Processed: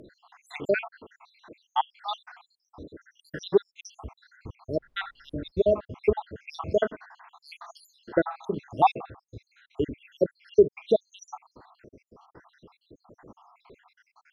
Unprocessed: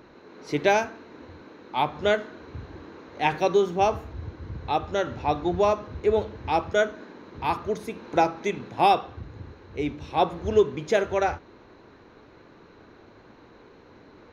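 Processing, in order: random spectral dropouts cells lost 81%; 4.75–5.5 added noise brown -69 dBFS; treble ducked by the level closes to 2300 Hz, closed at -22.5 dBFS; gain +3 dB

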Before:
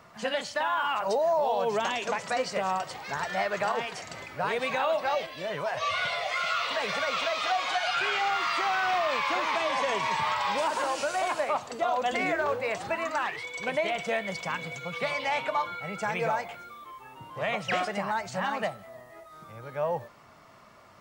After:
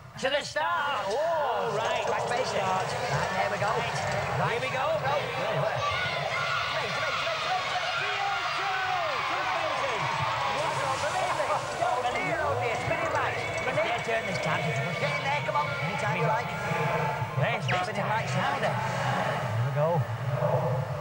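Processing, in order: resonant low shelf 170 Hz +9 dB, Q 3; on a send: diffused feedback echo 0.678 s, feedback 42%, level -4.5 dB; on the sum: vocal rider

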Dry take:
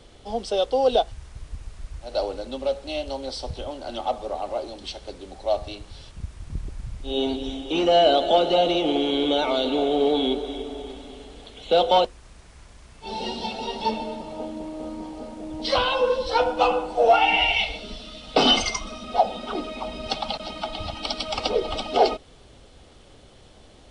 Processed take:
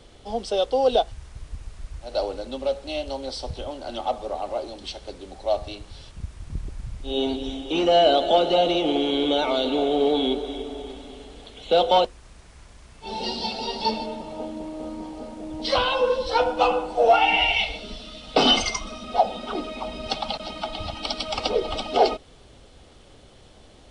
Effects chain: 13.23–14.06 bell 4700 Hz +12.5 dB 0.28 oct

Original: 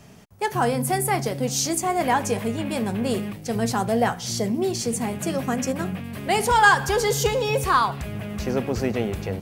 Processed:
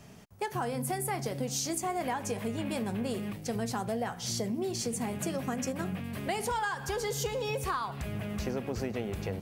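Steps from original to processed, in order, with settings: compressor 12:1, threshold -25 dBFS, peak gain reduction 15 dB; gain -4 dB

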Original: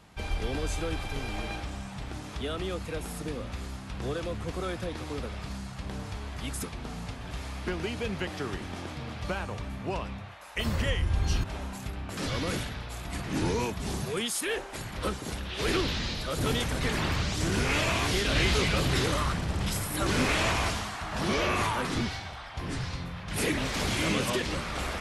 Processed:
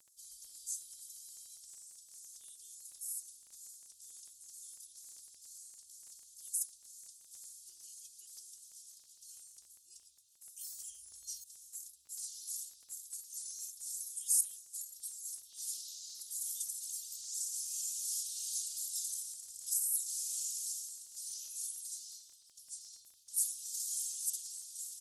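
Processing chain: inverse Chebyshev high-pass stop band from 2200 Hz, stop band 60 dB; comb 2.8 ms, depth 92%; crackle 15/s -52 dBFS; gain +2.5 dB

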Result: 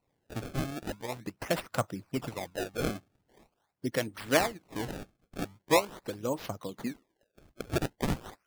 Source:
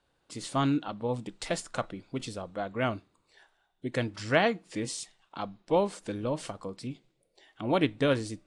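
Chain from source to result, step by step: harmonic-percussive split harmonic -18 dB; high-pass sweep 100 Hz -> 1400 Hz, 6.63–7.65; decimation with a swept rate 26×, swing 160% 0.43 Hz; gain +1.5 dB

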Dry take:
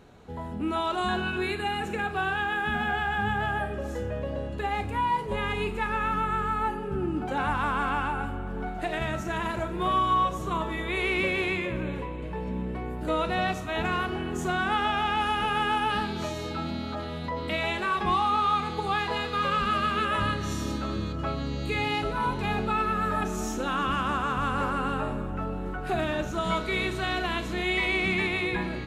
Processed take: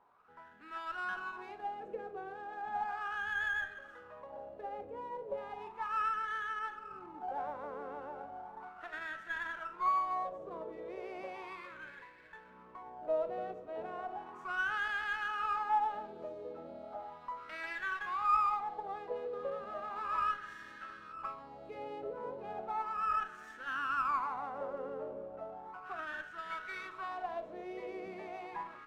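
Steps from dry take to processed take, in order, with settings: wah 0.35 Hz 500–1700 Hz, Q 6; running maximum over 3 samples

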